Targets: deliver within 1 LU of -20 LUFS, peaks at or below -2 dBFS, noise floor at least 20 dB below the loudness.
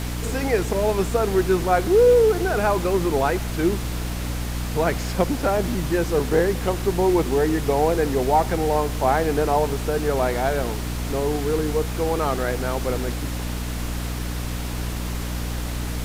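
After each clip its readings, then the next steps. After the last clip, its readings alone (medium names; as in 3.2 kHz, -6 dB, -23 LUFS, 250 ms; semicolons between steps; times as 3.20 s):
hum 60 Hz; highest harmonic 300 Hz; hum level -26 dBFS; noise floor -28 dBFS; noise floor target -43 dBFS; loudness -22.5 LUFS; peak level -5.5 dBFS; loudness target -20.0 LUFS
-> de-hum 60 Hz, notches 5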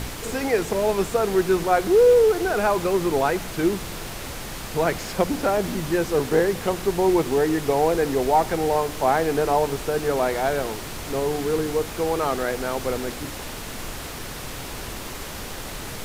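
hum not found; noise floor -34 dBFS; noise floor target -43 dBFS
-> noise print and reduce 9 dB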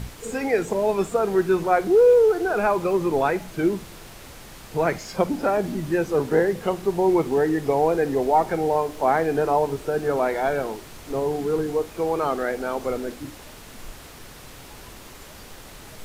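noise floor -43 dBFS; loudness -22.5 LUFS; peak level -6.5 dBFS; loudness target -20.0 LUFS
-> trim +2.5 dB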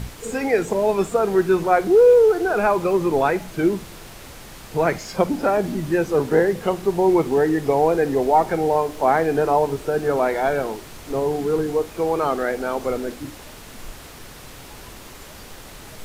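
loudness -20.0 LUFS; peak level -4.0 dBFS; noise floor -41 dBFS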